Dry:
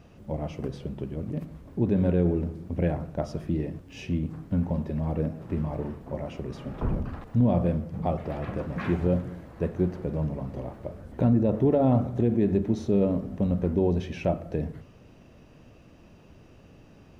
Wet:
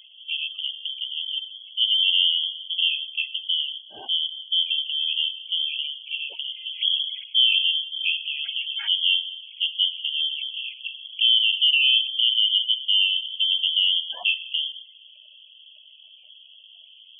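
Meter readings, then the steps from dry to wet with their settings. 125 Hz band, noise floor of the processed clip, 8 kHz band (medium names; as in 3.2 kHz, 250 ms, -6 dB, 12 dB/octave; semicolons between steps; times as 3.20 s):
under -40 dB, -50 dBFS, no reading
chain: spectral gate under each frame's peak -15 dB strong; frequency inversion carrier 3.3 kHz; trim +2.5 dB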